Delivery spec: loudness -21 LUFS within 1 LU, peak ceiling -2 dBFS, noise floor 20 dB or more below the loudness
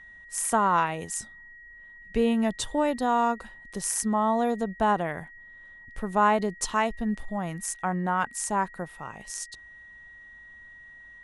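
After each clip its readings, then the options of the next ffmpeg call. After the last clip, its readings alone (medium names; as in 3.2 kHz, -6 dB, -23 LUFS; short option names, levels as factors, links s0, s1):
steady tone 1.9 kHz; tone level -46 dBFS; loudness -27.0 LUFS; peak level -10.5 dBFS; loudness target -21.0 LUFS
-> -af "bandreject=f=1900:w=30"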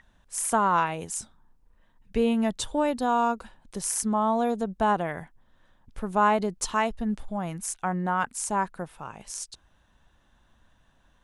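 steady tone not found; loudness -27.0 LUFS; peak level -10.5 dBFS; loudness target -21.0 LUFS
-> -af "volume=2"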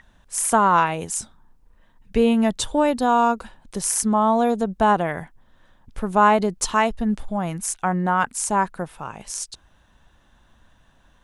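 loudness -21.0 LUFS; peak level -4.5 dBFS; noise floor -58 dBFS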